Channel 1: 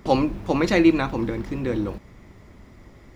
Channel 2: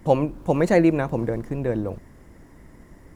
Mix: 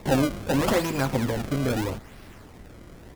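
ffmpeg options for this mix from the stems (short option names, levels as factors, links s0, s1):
-filter_complex "[0:a]aexciter=amount=11.9:drive=7.3:freq=5500,acrusher=samples=28:mix=1:aa=0.000001:lfo=1:lforange=44.8:lforate=0.79,asoftclip=type=tanh:threshold=0.188,volume=0.75[s0];[1:a]alimiter=limit=0.211:level=0:latency=1,adelay=11,volume=0.75[s1];[s0][s1]amix=inputs=2:normalize=0"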